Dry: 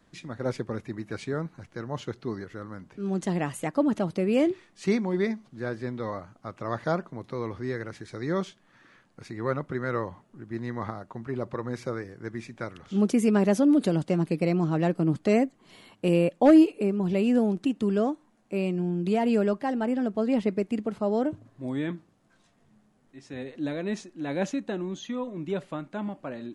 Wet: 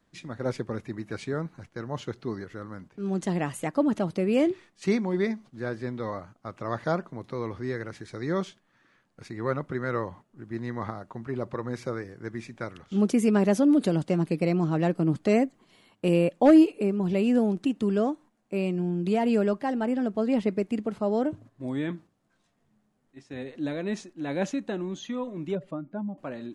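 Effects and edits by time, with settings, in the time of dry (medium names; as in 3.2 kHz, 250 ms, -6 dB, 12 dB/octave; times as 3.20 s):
25.55–26.18 s: spectral contrast enhancement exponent 1.7
whole clip: gate -47 dBFS, range -7 dB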